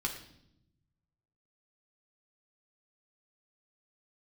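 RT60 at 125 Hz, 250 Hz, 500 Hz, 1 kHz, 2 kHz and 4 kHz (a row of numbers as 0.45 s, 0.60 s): 1.8 s, 1.3 s, 0.85 s, 0.65 s, 0.65 s, 0.70 s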